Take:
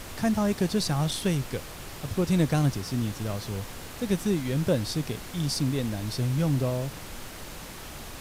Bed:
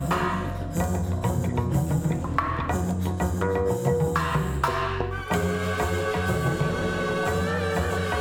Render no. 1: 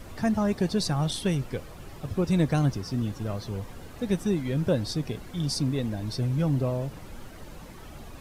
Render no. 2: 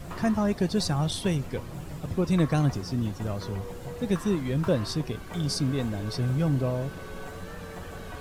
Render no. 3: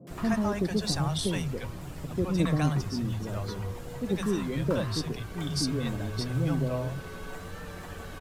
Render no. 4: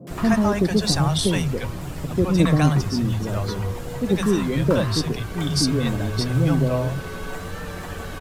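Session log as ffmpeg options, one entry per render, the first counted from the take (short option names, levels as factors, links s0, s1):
-af "afftdn=nr=11:nf=-41"
-filter_complex "[1:a]volume=0.158[s0];[0:a][s0]amix=inputs=2:normalize=0"
-filter_complex "[0:a]acrossover=split=160|570[s0][s1][s2];[s2]adelay=70[s3];[s0]adelay=100[s4];[s4][s1][s3]amix=inputs=3:normalize=0"
-af "volume=2.66"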